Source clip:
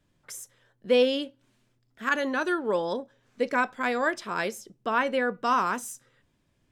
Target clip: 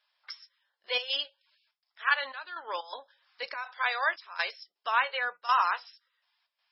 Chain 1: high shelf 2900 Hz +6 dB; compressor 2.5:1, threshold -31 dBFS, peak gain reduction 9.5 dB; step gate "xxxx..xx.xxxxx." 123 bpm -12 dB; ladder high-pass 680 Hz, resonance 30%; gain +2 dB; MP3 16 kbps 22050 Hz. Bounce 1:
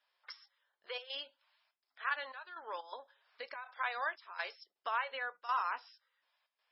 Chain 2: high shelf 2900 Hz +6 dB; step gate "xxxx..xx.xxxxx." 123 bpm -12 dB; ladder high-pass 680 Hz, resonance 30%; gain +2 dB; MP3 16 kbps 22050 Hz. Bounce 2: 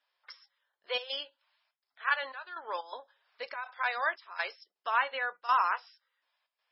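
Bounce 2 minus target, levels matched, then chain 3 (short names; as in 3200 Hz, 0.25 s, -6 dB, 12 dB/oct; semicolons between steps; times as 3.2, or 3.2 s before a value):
4000 Hz band -3.0 dB
high shelf 2900 Hz +16 dB; step gate "xxxx..xx.xxxxx." 123 bpm -12 dB; ladder high-pass 680 Hz, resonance 30%; gain +2 dB; MP3 16 kbps 22050 Hz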